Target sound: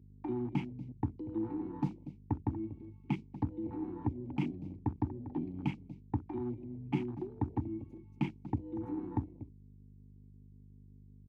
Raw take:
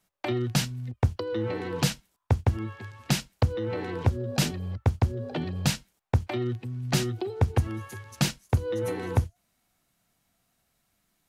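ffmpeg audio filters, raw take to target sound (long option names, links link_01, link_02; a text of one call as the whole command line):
ffmpeg -i in.wav -filter_complex "[0:a]bass=frequency=250:gain=10,treble=frequency=4000:gain=8,asplit=2[link_01][link_02];[link_02]aeval=exprs='val(0)*gte(abs(val(0)),0.126)':channel_layout=same,volume=-10dB[link_03];[link_01][link_03]amix=inputs=2:normalize=0,asplit=3[link_04][link_05][link_06];[link_04]bandpass=frequency=300:width_type=q:width=8,volume=0dB[link_07];[link_05]bandpass=frequency=870:width_type=q:width=8,volume=-6dB[link_08];[link_06]bandpass=frequency=2240:width_type=q:width=8,volume=-9dB[link_09];[link_07][link_08][link_09]amix=inputs=3:normalize=0,highshelf=frequency=4800:gain=-2.5,asplit=2[link_10][link_11];[link_11]adelay=239.1,volume=-13dB,highshelf=frequency=4000:gain=-5.38[link_12];[link_10][link_12]amix=inputs=2:normalize=0,aeval=exprs='val(0)+0.00282*(sin(2*PI*50*n/s)+sin(2*PI*2*50*n/s)/2+sin(2*PI*3*50*n/s)/3+sin(2*PI*4*50*n/s)/4+sin(2*PI*5*50*n/s)/5)':channel_layout=same,afwtdn=0.00447,highpass=frequency=61:width=0.5412,highpass=frequency=61:width=1.3066" out.wav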